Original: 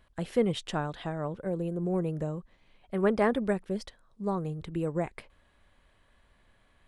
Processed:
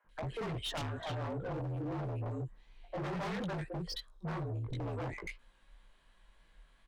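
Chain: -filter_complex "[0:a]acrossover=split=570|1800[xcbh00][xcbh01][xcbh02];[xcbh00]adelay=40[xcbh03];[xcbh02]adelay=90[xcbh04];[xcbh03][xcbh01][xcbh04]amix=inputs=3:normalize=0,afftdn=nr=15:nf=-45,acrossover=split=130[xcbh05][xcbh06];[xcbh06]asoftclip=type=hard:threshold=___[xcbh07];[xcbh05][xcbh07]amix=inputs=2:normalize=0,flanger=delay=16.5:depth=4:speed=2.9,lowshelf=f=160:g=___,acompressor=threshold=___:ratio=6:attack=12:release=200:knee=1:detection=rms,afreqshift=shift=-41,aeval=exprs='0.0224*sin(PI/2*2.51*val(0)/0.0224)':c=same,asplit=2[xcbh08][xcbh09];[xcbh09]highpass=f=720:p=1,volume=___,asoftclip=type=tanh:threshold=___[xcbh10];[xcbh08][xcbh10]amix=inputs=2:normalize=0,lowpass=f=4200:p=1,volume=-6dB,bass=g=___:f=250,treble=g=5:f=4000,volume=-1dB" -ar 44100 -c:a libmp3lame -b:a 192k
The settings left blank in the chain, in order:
-28.5dB, 3, -42dB, 13dB, -32.5dB, 4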